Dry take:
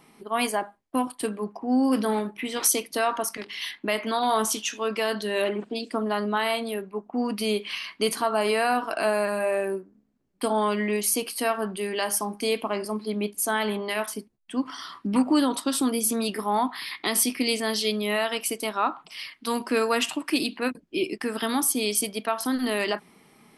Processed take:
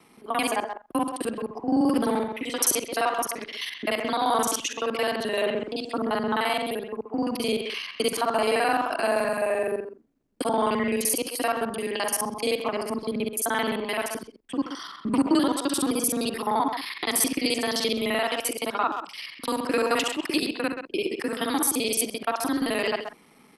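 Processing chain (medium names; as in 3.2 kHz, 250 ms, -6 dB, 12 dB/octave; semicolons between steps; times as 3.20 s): time reversed locally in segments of 43 ms; speakerphone echo 130 ms, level -7 dB; frequency shift +18 Hz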